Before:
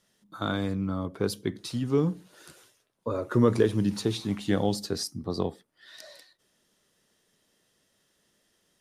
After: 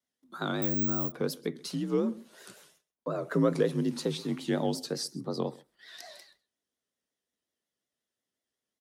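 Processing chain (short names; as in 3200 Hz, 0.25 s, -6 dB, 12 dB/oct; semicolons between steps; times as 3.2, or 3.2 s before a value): frequency shift +48 Hz; in parallel at -1 dB: compressor, threshold -37 dBFS, peak gain reduction 19.5 dB; on the sum: vibrato 5.5 Hz 91 cents; gate -60 dBFS, range -20 dB; on a send: echo 0.131 s -23 dB; 0.62–1.12 on the sum: careless resampling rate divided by 2×, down none, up zero stuff; gain -5 dB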